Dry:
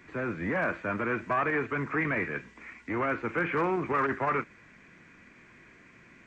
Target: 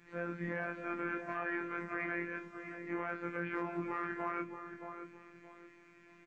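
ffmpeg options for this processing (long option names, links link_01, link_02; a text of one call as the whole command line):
ffmpeg -i in.wav -filter_complex "[0:a]afftfilt=real='re':imag='-im':win_size=2048:overlap=0.75,afftfilt=real='hypot(re,im)*cos(PI*b)':imag='0':win_size=1024:overlap=0.75,alimiter=level_in=2dB:limit=-24dB:level=0:latency=1:release=182,volume=-2dB,adynamicequalizer=threshold=0.00178:dfrequency=1600:dqfactor=3.7:tfrequency=1600:tqfactor=3.7:attack=5:release=100:ratio=0.375:range=1.5:mode=boostabove:tftype=bell,asplit=2[link_01][link_02];[link_02]adelay=624,lowpass=frequency=850:poles=1,volume=-5dB,asplit=2[link_03][link_04];[link_04]adelay=624,lowpass=frequency=850:poles=1,volume=0.33,asplit=2[link_05][link_06];[link_06]adelay=624,lowpass=frequency=850:poles=1,volume=0.33,asplit=2[link_07][link_08];[link_08]adelay=624,lowpass=frequency=850:poles=1,volume=0.33[link_09];[link_03][link_05][link_07][link_09]amix=inputs=4:normalize=0[link_10];[link_01][link_10]amix=inputs=2:normalize=0" out.wav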